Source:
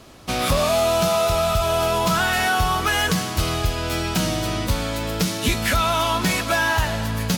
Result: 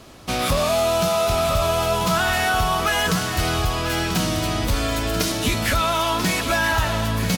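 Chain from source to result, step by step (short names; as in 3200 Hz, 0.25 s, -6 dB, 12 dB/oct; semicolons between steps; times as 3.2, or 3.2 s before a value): 4.73–5.32 comb 2.9 ms, depth 81%; in parallel at -0.5 dB: limiter -16.5 dBFS, peak gain reduction 7 dB; on the sum: echo 0.988 s -8.5 dB; gain -4.5 dB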